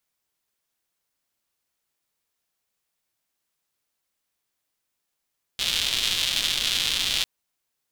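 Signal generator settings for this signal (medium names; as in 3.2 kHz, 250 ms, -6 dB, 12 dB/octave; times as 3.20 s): rain from filtered ticks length 1.65 s, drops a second 280, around 3.4 kHz, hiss -15 dB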